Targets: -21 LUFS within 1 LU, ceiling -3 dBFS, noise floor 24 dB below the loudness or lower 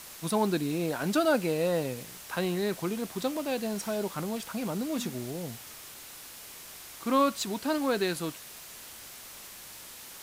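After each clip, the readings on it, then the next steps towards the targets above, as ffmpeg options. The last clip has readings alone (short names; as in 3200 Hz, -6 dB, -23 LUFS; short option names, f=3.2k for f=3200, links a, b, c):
noise floor -47 dBFS; noise floor target -55 dBFS; loudness -30.5 LUFS; peak -13.5 dBFS; loudness target -21.0 LUFS
-> -af "afftdn=nr=8:nf=-47"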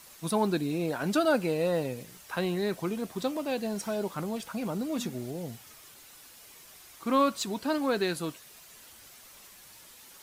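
noise floor -53 dBFS; noise floor target -55 dBFS
-> -af "afftdn=nr=6:nf=-53"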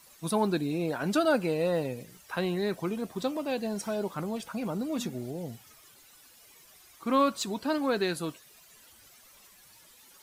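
noise floor -57 dBFS; loudness -30.5 LUFS; peak -13.5 dBFS; loudness target -21.0 LUFS
-> -af "volume=9.5dB"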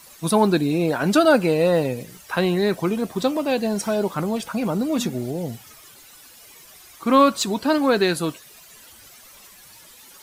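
loudness -21.0 LUFS; peak -4.0 dBFS; noise floor -47 dBFS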